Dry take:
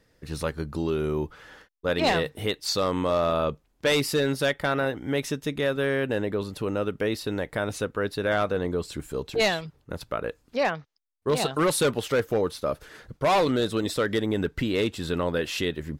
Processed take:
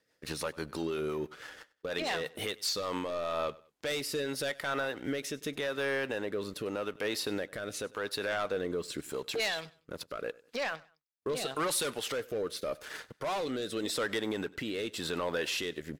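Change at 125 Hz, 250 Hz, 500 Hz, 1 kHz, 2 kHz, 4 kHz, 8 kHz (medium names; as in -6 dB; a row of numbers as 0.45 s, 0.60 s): -14.5 dB, -10.0 dB, -8.5 dB, -9.0 dB, -6.0 dB, -5.0 dB, -3.0 dB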